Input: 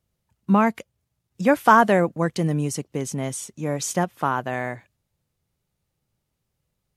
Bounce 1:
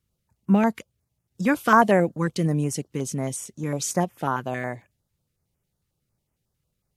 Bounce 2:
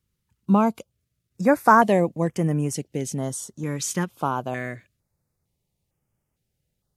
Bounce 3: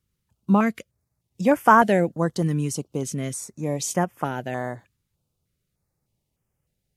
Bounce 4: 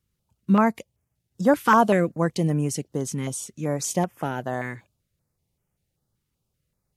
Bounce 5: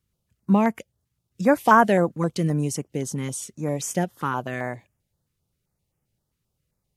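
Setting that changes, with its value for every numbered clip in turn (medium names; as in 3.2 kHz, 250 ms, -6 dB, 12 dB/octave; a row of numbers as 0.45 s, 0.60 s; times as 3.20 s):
step-sequenced notch, rate: 11 Hz, 2.2 Hz, 3.3 Hz, 5.2 Hz, 7.6 Hz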